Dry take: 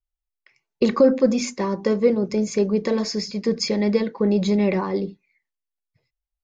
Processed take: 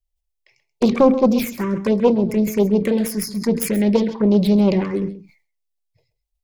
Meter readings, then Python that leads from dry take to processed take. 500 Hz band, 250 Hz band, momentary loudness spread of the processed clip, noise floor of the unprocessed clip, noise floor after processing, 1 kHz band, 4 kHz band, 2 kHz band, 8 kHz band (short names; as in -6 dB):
+1.5 dB, +4.5 dB, 8 LU, -85 dBFS, -76 dBFS, +4.0 dB, -3.0 dB, +0.5 dB, n/a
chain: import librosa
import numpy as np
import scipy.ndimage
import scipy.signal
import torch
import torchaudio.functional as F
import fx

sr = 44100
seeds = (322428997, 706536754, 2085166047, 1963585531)

p1 = fx.self_delay(x, sr, depth_ms=0.31)
p2 = fx.low_shelf(p1, sr, hz=130.0, db=5.0)
p3 = fx.env_phaser(p2, sr, low_hz=230.0, high_hz=1800.0, full_db=-14.5)
p4 = p3 + fx.echo_single(p3, sr, ms=132, db=-15.0, dry=0)
p5 = fx.sustainer(p4, sr, db_per_s=130.0)
y = F.gain(torch.from_numpy(p5), 3.5).numpy()